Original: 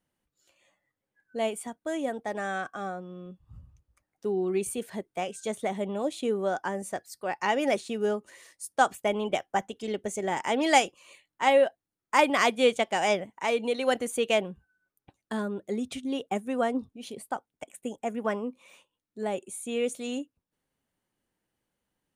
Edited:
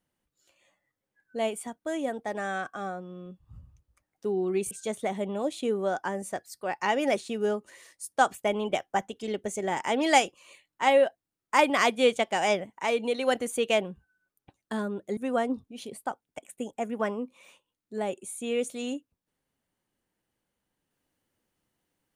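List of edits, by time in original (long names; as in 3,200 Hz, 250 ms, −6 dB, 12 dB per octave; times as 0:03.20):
0:04.71–0:05.31: remove
0:15.77–0:16.42: remove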